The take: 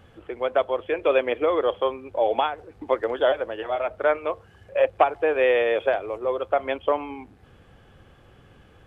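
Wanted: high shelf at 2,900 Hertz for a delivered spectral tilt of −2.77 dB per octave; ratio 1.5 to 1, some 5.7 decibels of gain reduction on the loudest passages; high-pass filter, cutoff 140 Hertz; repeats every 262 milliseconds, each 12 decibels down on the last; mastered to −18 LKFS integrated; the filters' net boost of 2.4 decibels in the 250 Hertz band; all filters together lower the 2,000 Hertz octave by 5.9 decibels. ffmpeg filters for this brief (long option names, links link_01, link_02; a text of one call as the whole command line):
ffmpeg -i in.wav -af "highpass=140,equalizer=frequency=250:width_type=o:gain=4,equalizer=frequency=2000:width_type=o:gain=-6,highshelf=frequency=2900:gain=-5,acompressor=threshold=-30dB:ratio=1.5,aecho=1:1:262|524|786:0.251|0.0628|0.0157,volume=10.5dB" out.wav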